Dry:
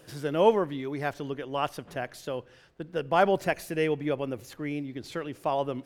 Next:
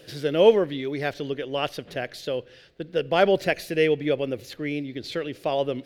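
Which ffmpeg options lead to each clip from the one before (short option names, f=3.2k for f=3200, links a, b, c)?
-af "equalizer=f=500:t=o:w=1:g=6,equalizer=f=1k:t=o:w=1:g=-9,equalizer=f=2k:t=o:w=1:g=4,equalizer=f=4k:t=o:w=1:g=9,equalizer=f=8k:t=o:w=1:g=-4,volume=2dB"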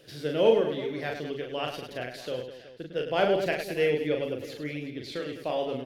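-af "aecho=1:1:40|104|206.4|370.2|632.4:0.631|0.398|0.251|0.158|0.1,volume=-6.5dB"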